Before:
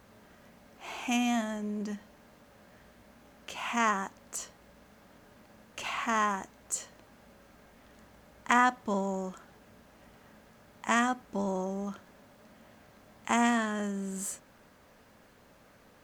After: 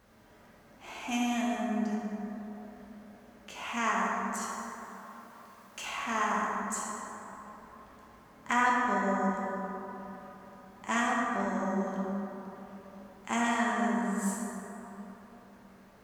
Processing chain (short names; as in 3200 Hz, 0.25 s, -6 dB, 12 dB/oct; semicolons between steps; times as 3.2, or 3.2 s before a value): 4.41–5.85 tilt +2 dB/oct; plate-style reverb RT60 3.7 s, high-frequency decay 0.35×, DRR -4.5 dB; gain -5.5 dB